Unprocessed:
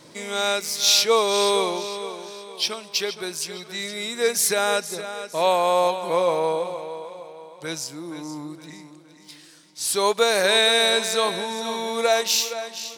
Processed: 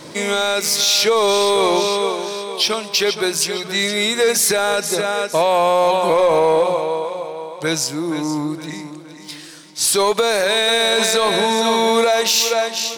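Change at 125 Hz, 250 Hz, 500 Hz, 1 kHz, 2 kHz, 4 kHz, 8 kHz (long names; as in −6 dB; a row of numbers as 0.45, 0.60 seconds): +9.5, +10.0, +6.5, +6.0, +5.0, +4.5, +5.5 decibels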